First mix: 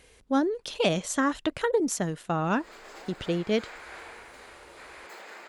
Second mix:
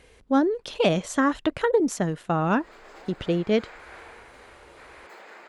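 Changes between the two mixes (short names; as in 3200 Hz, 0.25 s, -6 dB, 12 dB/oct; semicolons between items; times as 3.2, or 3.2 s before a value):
speech +4.0 dB; master: add high shelf 3800 Hz -9 dB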